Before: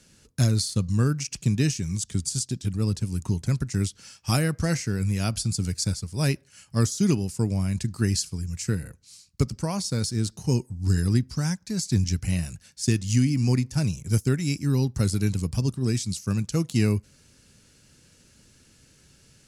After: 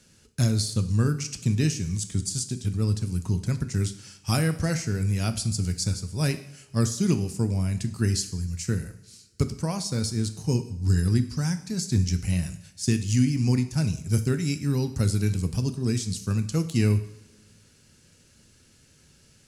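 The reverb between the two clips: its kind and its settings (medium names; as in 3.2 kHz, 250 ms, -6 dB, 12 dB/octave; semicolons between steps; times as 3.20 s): two-slope reverb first 0.66 s, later 2 s, DRR 9 dB; trim -1.5 dB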